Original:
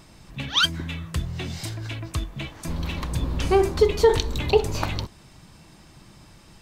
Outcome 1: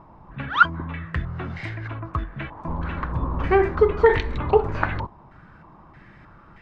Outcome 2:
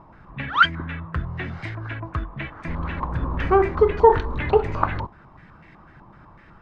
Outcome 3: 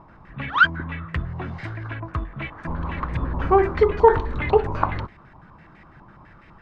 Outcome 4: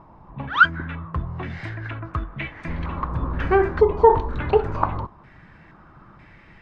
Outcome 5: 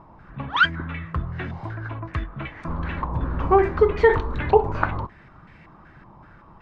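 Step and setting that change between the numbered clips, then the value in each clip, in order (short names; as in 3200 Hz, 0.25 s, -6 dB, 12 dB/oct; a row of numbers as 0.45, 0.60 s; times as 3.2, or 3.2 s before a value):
stepped low-pass, rate: 3.2, 8, 12, 2.1, 5.3 Hz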